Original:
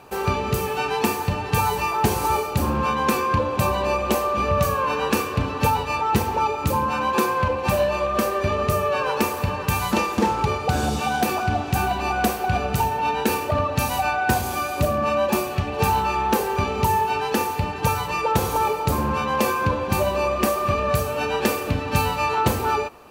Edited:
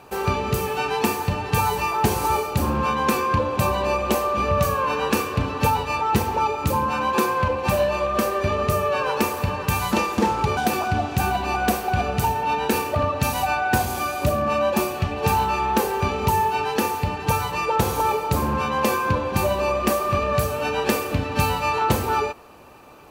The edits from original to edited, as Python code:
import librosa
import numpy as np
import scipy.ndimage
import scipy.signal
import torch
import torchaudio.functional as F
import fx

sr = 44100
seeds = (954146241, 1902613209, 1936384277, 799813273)

y = fx.edit(x, sr, fx.cut(start_s=10.57, length_s=0.56), tone=tone)